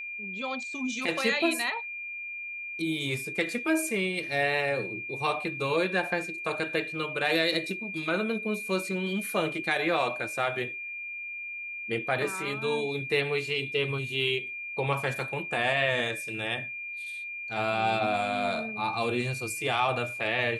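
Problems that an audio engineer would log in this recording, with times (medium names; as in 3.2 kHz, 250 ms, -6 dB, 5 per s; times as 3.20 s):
whine 2.4 kHz -35 dBFS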